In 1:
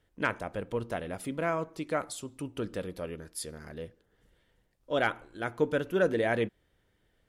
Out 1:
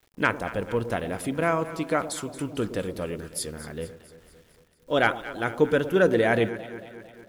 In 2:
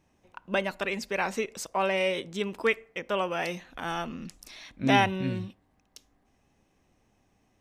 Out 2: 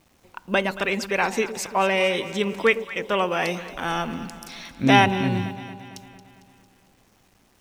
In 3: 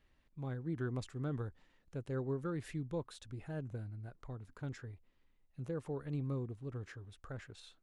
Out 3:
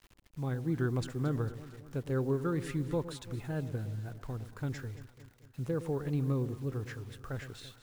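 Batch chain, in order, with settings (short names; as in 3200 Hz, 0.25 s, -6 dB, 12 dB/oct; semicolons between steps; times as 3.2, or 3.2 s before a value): bell 610 Hz -3 dB 0.24 oct; bit-crush 11-bit; on a send: echo with dull and thin repeats by turns 0.113 s, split 830 Hz, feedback 75%, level -12 dB; on the sum: gain +6.5 dB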